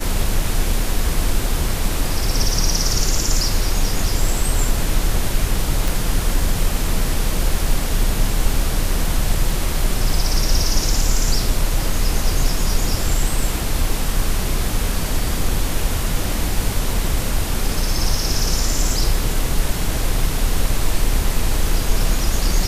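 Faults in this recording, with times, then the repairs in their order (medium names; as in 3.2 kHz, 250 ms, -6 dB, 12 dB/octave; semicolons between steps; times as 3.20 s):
5.88 s: pop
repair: de-click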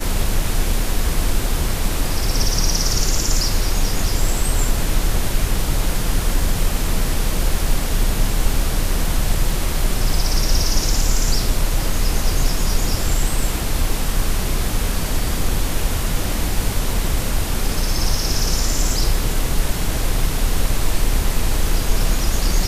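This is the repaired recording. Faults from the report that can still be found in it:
nothing left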